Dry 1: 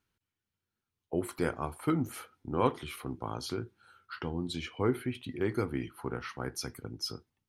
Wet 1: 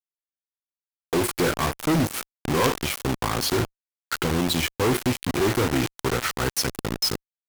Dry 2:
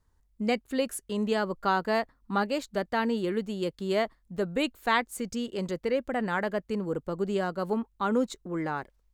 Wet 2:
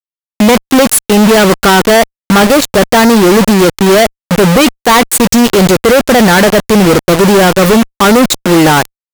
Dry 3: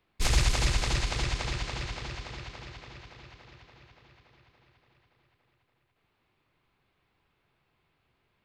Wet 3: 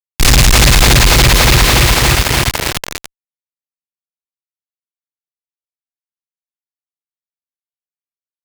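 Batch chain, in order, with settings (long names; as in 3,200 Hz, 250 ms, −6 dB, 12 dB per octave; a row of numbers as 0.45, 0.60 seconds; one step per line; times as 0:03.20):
log-companded quantiser 2 bits
asymmetric clip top −8.5 dBFS
normalise the peak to −1.5 dBFS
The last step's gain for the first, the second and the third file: +6.0, +20.5, +19.0 decibels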